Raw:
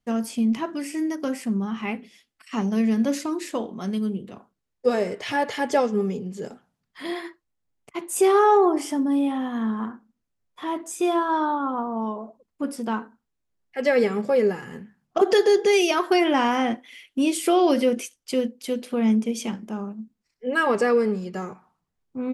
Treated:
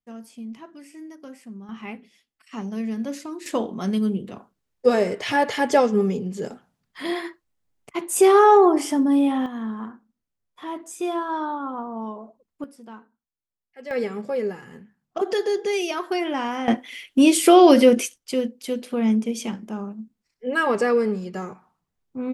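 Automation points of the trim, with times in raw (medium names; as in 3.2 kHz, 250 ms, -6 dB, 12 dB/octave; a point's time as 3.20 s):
-14 dB
from 1.69 s -6.5 dB
from 3.46 s +3.5 dB
from 9.46 s -4 dB
from 12.64 s -15 dB
from 13.91 s -5.5 dB
from 16.68 s +7 dB
from 18.18 s 0 dB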